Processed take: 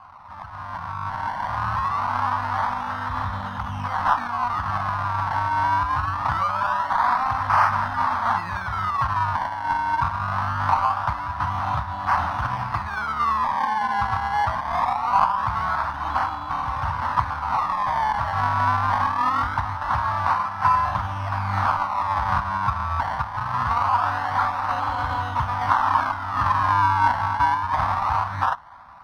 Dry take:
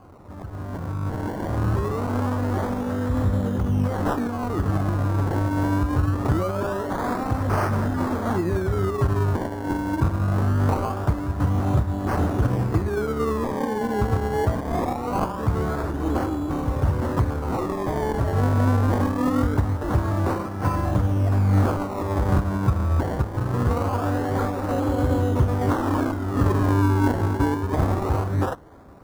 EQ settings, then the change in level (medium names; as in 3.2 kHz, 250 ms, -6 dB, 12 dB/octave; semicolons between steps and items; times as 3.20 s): Savitzky-Golay filter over 15 samples; peaking EQ 380 Hz -15 dB 0.66 oct; resonant low shelf 640 Hz -13.5 dB, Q 3; +5.0 dB